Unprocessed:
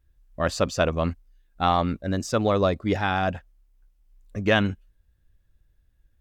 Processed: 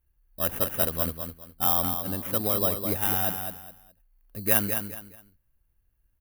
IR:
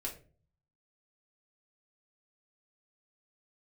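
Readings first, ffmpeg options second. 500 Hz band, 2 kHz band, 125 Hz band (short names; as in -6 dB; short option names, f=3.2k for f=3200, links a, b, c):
-7.5 dB, -8.0 dB, -7.0 dB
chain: -af "acrusher=samples=10:mix=1:aa=0.000001,aecho=1:1:208|416|624:0.447|0.121|0.0326,aexciter=amount=11.4:drive=2.7:freq=10k,volume=-8dB"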